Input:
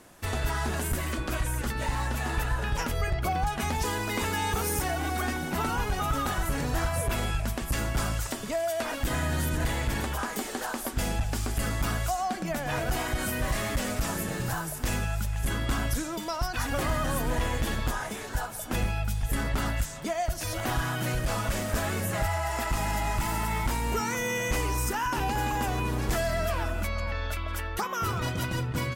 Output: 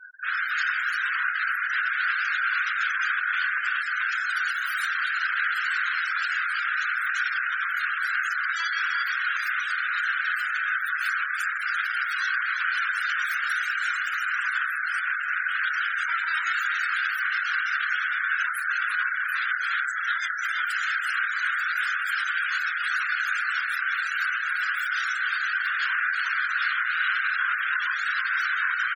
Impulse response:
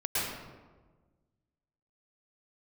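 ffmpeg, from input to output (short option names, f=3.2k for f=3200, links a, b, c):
-filter_complex "[0:a]equalizer=f=13k:w=3.9:g=3,aeval=exprs='(mod(37.6*val(0)+1,2)-1)/37.6':c=same,highpass=f=1.5k:t=q:w=7.3,alimiter=level_in=2dB:limit=-24dB:level=0:latency=1:release=109,volume=-2dB,afftfilt=real='re*gte(hypot(re,im),0.0126)':imag='im*gte(hypot(re,im),0.0126)':win_size=1024:overlap=0.75,asplit=2[a][b];[b]adelay=24,volume=-6dB[c];[a][c]amix=inputs=2:normalize=0,aecho=1:1:174|312|341:0.178|0.15|0.631,afftfilt=real='re*gte(hypot(re,im),0.0178)':imag='im*gte(hypot(re,im),0.0178)':win_size=1024:overlap=0.75,volume=8.5dB"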